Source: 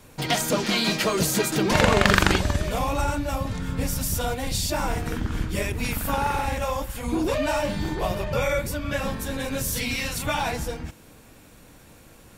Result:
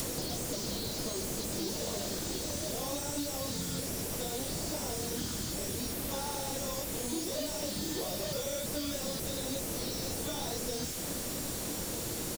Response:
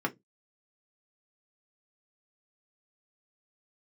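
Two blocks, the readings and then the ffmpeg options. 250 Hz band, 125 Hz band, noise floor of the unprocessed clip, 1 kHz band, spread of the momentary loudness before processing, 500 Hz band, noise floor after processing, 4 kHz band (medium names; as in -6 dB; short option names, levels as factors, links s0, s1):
-10.0 dB, -13.0 dB, -50 dBFS, -15.5 dB, 9 LU, -10.5 dB, -37 dBFS, -8.0 dB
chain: -filter_complex "[0:a]asplit=2[s0][s1];[s1]adelay=24,volume=0.531[s2];[s0][s2]amix=inputs=2:normalize=0,acompressor=threshold=0.0178:ratio=6,aexciter=amount=13.6:drive=6.8:freq=3700,asplit=2[s3][s4];[s4]highpass=f=720:p=1,volume=50.1,asoftclip=type=tanh:threshold=1[s5];[s3][s5]amix=inputs=2:normalize=0,lowpass=f=4400:p=1,volume=0.501,equalizer=f=440:t=o:w=0.34:g=2.5,bandreject=f=420:w=12,acrossover=split=590[s6][s7];[s7]asoftclip=type=tanh:threshold=0.0355[s8];[s6][s8]amix=inputs=2:normalize=0,acrossover=split=1500|7000[s9][s10][s11];[s9]acompressor=threshold=0.0141:ratio=4[s12];[s10]acompressor=threshold=0.00631:ratio=4[s13];[s11]acompressor=threshold=0.00708:ratio=4[s14];[s12][s13][s14]amix=inputs=3:normalize=0"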